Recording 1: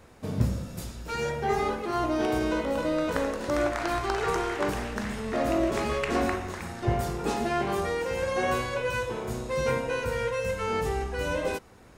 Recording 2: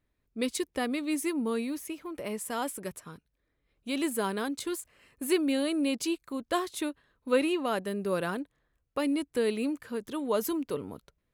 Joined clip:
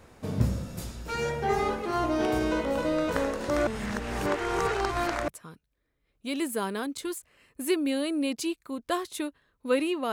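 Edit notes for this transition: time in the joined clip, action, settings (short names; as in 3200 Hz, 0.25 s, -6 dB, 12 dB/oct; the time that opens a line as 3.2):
recording 1
3.67–5.28 reverse
5.28 switch to recording 2 from 2.9 s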